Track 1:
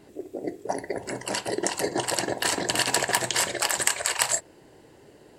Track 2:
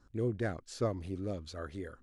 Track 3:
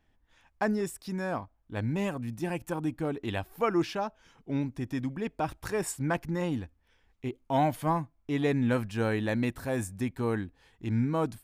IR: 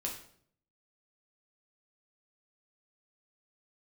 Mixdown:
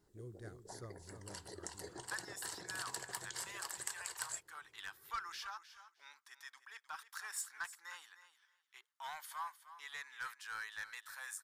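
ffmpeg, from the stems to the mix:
-filter_complex "[0:a]volume=0.126[s0];[1:a]aemphasis=mode=production:type=50fm,volume=0.2,asplit=2[s1][s2];[s2]volume=0.355[s3];[2:a]highpass=f=1200:w=0.5412,highpass=f=1200:w=1.3066,highshelf=f=5600:g=-4.5,asoftclip=type=tanh:threshold=0.0316,adelay=1500,volume=0.944,asplit=2[s4][s5];[s5]volume=0.211[s6];[s3][s6]amix=inputs=2:normalize=0,aecho=0:1:308|616|924:1|0.17|0.0289[s7];[s0][s1][s4][s7]amix=inputs=4:normalize=0,equalizer=f=250:t=o:w=0.67:g=-10,equalizer=f=630:t=o:w=0.67:g=-10,equalizer=f=2500:t=o:w=0.67:g=-11"

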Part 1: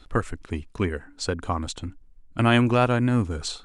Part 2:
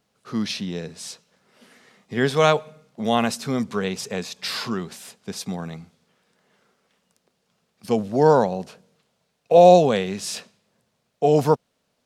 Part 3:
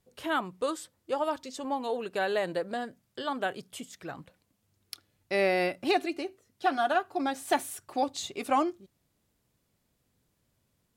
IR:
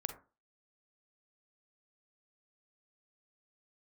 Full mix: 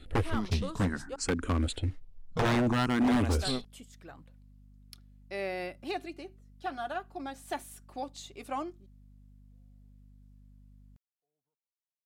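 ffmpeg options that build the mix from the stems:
-filter_complex "[0:a]lowshelf=f=360:g=4.5,alimiter=limit=0.355:level=0:latency=1:release=490,asplit=2[s0][s1];[s1]afreqshift=0.6[s2];[s0][s2]amix=inputs=2:normalize=1,volume=1.06,asplit=2[s3][s4];[1:a]alimiter=limit=0.224:level=0:latency=1:release=83,volume=0.355[s5];[2:a]aeval=exprs='val(0)+0.00562*(sin(2*PI*50*n/s)+sin(2*PI*2*50*n/s)/2+sin(2*PI*3*50*n/s)/3+sin(2*PI*4*50*n/s)/4+sin(2*PI*5*50*n/s)/5)':c=same,volume=0.335,asplit=3[s6][s7][s8];[s6]atrim=end=1.16,asetpts=PTS-STARTPTS,afade=t=out:st=1.156:d=0.004:c=hsin[s9];[s7]atrim=start=1.16:end=3.29,asetpts=PTS-STARTPTS,volume=0[s10];[s8]atrim=start=3.29,asetpts=PTS-STARTPTS,afade=t=in:d=0.004:c=hsin[s11];[s9][s10][s11]concat=n=3:v=0:a=1[s12];[s4]apad=whole_len=531504[s13];[s5][s13]sidechaingate=range=0.00112:threshold=0.0158:ratio=16:detection=peak[s14];[s3][s14][s12]amix=inputs=3:normalize=0,aeval=exprs='0.0944*(abs(mod(val(0)/0.0944+3,4)-2)-1)':c=same"

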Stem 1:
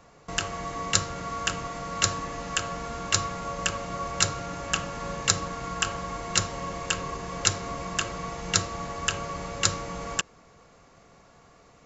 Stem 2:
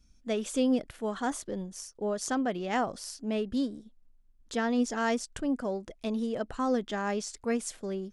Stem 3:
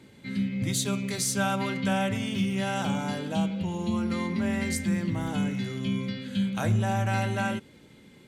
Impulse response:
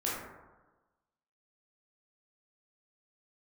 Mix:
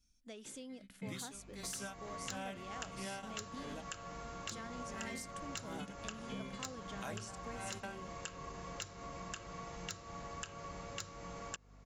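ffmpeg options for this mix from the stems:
-filter_complex "[0:a]aeval=exprs='val(0)+0.00447*(sin(2*PI*50*n/s)+sin(2*PI*2*50*n/s)/2+sin(2*PI*3*50*n/s)/3+sin(2*PI*4*50*n/s)/4+sin(2*PI*5*50*n/s)/5)':c=same,adelay=1350,volume=0.299[s0];[1:a]highshelf=f=2100:g=10,acompressor=threshold=0.0178:ratio=3,volume=0.188,asplit=2[s1][s2];[2:a]highpass=f=300:p=1,aeval=exprs='val(0)*pow(10,-26*(0.5-0.5*cos(2*PI*1.5*n/s))/20)':c=same,adelay=450,volume=0.891[s3];[s2]apad=whole_len=384714[s4];[s3][s4]sidechaingate=range=0.0224:threshold=0.00126:ratio=16:detection=peak[s5];[s0][s5]amix=inputs=2:normalize=0,asoftclip=type=hard:threshold=0.106,acompressor=threshold=0.00794:ratio=6,volume=1[s6];[s1][s6]amix=inputs=2:normalize=0"

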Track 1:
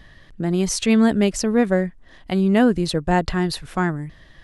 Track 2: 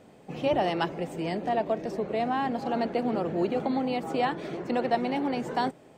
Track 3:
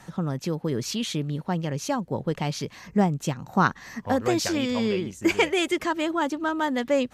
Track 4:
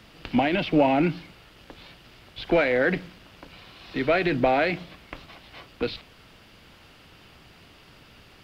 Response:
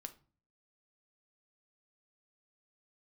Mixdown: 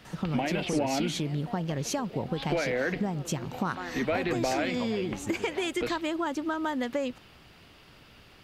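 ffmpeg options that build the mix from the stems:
-filter_complex "[0:a]highpass=450,volume=0.211,asplit=3[s0][s1][s2];[s0]atrim=end=0.8,asetpts=PTS-STARTPTS,afade=t=out:st=0.796:d=0.004:c=hsin[s3];[s1]atrim=start=0.8:end=3.6,asetpts=PTS-STARTPTS,volume=0[s4];[s2]atrim=start=3.6,asetpts=PTS-STARTPTS,afade=t=in:d=0.004:c=hsin[s5];[s3][s4][s5]concat=n=3:v=0:a=1[s6];[1:a]acompressor=threshold=0.0126:ratio=2,volume=0.376[s7];[2:a]acompressor=threshold=0.0355:ratio=3,adelay=50,volume=1.33[s8];[3:a]volume=0.75[s9];[s6][s7][s8][s9]amix=inputs=4:normalize=0,acompressor=threshold=0.0501:ratio=3"

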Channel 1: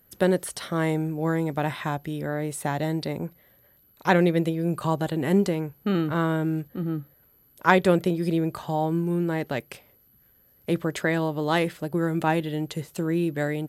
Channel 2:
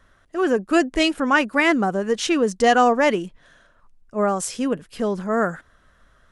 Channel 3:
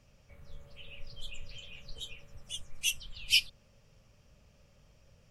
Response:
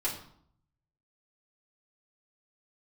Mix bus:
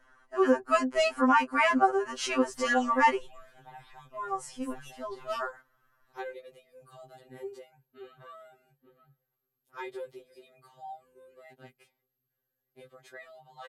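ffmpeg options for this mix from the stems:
-filter_complex "[0:a]aecho=1:1:5.3:0.45,adelay=2100,volume=0.106[s0];[1:a]equalizer=f=1000:w=1.1:g=9,bandreject=f=3600:w=6.3,alimiter=limit=0.596:level=0:latency=1:release=232,volume=0.596,afade=t=out:st=2.9:d=0.76:silence=0.316228,asplit=2[s1][s2];[2:a]acrossover=split=330[s3][s4];[s4]acompressor=threshold=0.00355:ratio=1.5[s5];[s3][s5]amix=inputs=2:normalize=0,adelay=2000,volume=0.299[s6];[s2]apad=whole_len=322319[s7];[s6][s7]sidechaingate=range=0.355:threshold=0.00224:ratio=16:detection=peak[s8];[s0][s1][s8]amix=inputs=3:normalize=0,equalizer=f=140:t=o:w=0.51:g=-5,afftfilt=real='re*2.45*eq(mod(b,6),0)':imag='im*2.45*eq(mod(b,6),0)':win_size=2048:overlap=0.75"

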